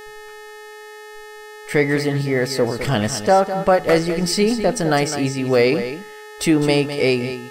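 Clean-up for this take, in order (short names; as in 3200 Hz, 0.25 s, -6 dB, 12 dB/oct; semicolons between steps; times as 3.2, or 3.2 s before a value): de-hum 424.7 Hz, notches 35; notch 1800 Hz, Q 30; inverse comb 0.206 s -10.5 dB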